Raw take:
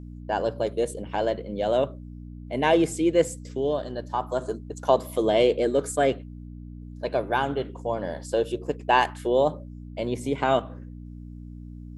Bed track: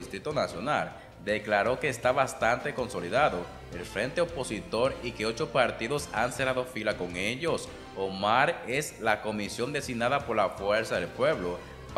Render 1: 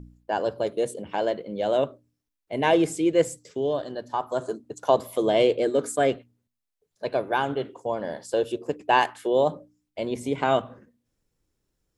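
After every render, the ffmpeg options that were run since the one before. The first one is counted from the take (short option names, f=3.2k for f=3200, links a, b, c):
-af "bandreject=f=60:t=h:w=4,bandreject=f=120:t=h:w=4,bandreject=f=180:t=h:w=4,bandreject=f=240:t=h:w=4,bandreject=f=300:t=h:w=4"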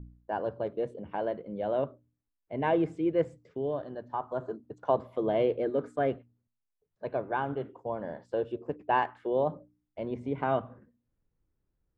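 -af "lowpass=1.3k,equalizer=f=490:w=0.41:g=-6.5"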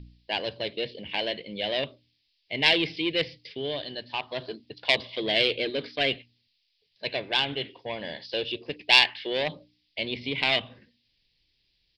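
-af "aresample=11025,asoftclip=type=tanh:threshold=-21.5dB,aresample=44100,aexciter=amount=14.4:drive=9.7:freq=2.2k"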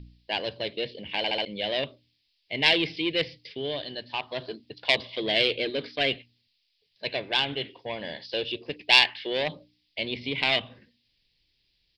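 -filter_complex "[0:a]asplit=5[a][b][c][d][e];[a]atrim=end=1.242[f];[b]atrim=start=1.168:end=1.242[g];[c]atrim=start=1.168:end=1.242[h];[d]atrim=start=1.168:end=1.242[i];[e]atrim=start=1.448[j];[f][g]acrossfade=d=0.004:c1=hsin:c2=hsin[k];[k][h]acrossfade=d=0.004:c1=hsin:c2=hsin[l];[l][i]acrossfade=d=0.004:c1=hsin:c2=hsin[m];[m][j]acrossfade=d=0.004:c1=hsin:c2=hsin"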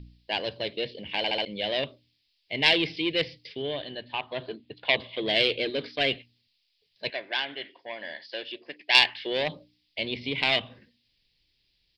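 -filter_complex "[0:a]asettb=1/sr,asplit=3[a][b][c];[a]atrim=end=3.624[d];[b]atrim=start=3.62:end=5.26,asetpts=PTS-STARTPTS,afade=t=in:d=0.004:c=qsin,afade=t=out:st=1.636:d=0.004:c=qsin,lowpass=f=3.6k:w=0.5412,lowpass=f=3.6k:w=1.3066[e];[c]atrim=start=5.256[f];[d][e]acrossfade=d=0.004:c1=hsin:c2=qsin[g];[g][f]acrossfade=d=0.004:c1=qsin:c2=hsin,asettb=1/sr,asplit=3[h][i][j];[h]atrim=end=7.104[k];[i]atrim=start=7.1:end=8.95,asetpts=PTS-STARTPTS,afade=t=in:d=0.004:c=qsin,afade=t=out:st=1.846:d=0.004:c=qsin,highpass=410,equalizer=f=460:t=q:w=4:g=-10,equalizer=f=850:t=q:w=4:g=-5,equalizer=f=1.2k:t=q:w=4:g=-4,equalizer=f=1.8k:t=q:w=4:g=5,equalizer=f=2.7k:t=q:w=4:g=-6,equalizer=f=3.8k:t=q:w=4:g=-7,lowpass=f=4.9k:w=0.5412,lowpass=f=4.9k:w=1.3066[l];[j]atrim=start=8.946[m];[k][l]acrossfade=d=0.004:c1=hsin:c2=qsin[n];[n][m]acrossfade=d=0.004:c1=qsin:c2=hsin"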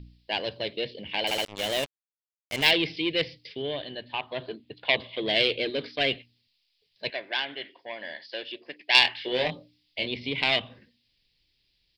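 -filter_complex "[0:a]asettb=1/sr,asplit=3[a][b][c];[a]atrim=end=1.274[d];[b]atrim=start=1.27:end=2.71,asetpts=PTS-STARTPTS,afade=t=in:d=0.004:c=qsin,afade=t=out:st=1.436:d=0.004:c=qsin,acrusher=bits=4:mix=0:aa=0.5[e];[c]atrim=start=2.706[f];[d][e]acrossfade=d=0.004:c1=hsin:c2=qsin[g];[g][f]acrossfade=d=0.004:c1=qsin:c2=hsin,asettb=1/sr,asplit=3[h][i][j];[h]atrim=end=9.024[k];[i]atrim=start=9.02:end=10.07,asetpts=PTS-STARTPTS,afade=t=in:d=0.004:c=qsin,afade=t=out:st=1.046:d=0.004:c=qsin,asplit=2[l][m];[m]adelay=24,volume=-4.5dB[n];[l][n]amix=inputs=2:normalize=0,atrim=end_sample=46305[o];[j]atrim=start=10.066[p];[k][o]acrossfade=d=0.004:c1=hsin:c2=qsin[q];[q][p]acrossfade=d=0.004:c1=qsin:c2=hsin"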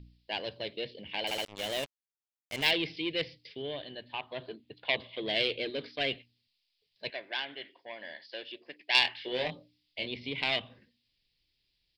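-af "volume=-6dB"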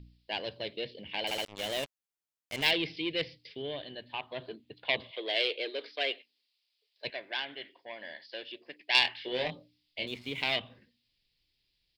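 -filter_complex "[0:a]asettb=1/sr,asplit=3[a][b][c];[a]atrim=end=5.114[d];[b]atrim=start=5.11:end=7.05,asetpts=PTS-STARTPTS,afade=t=in:d=0.004:c=qsin,afade=t=out:st=1.936:d=0.004:c=qsin,highpass=f=370:w=0.5412,highpass=f=370:w=1.3066[e];[c]atrim=start=7.046[f];[d][e]acrossfade=d=0.004:c1=hsin:c2=qsin[g];[g][f]acrossfade=d=0.004:c1=qsin:c2=hsin,asettb=1/sr,asplit=3[h][i][j];[h]atrim=end=10.074[k];[i]atrim=start=10.07:end=10.55,asetpts=PTS-STARTPTS,afade=t=in:d=0.004:c=qsin,afade=t=out:st=0.476:d=0.004:c=qsin,aeval=exprs='sgn(val(0))*max(abs(val(0))-0.002,0)':c=same[l];[j]atrim=start=10.546[m];[k][l]acrossfade=d=0.004:c1=hsin:c2=qsin[n];[n][m]acrossfade=d=0.004:c1=qsin:c2=hsin"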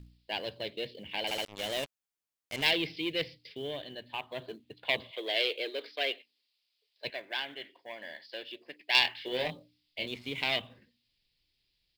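-af "acrusher=bits=7:mode=log:mix=0:aa=0.000001"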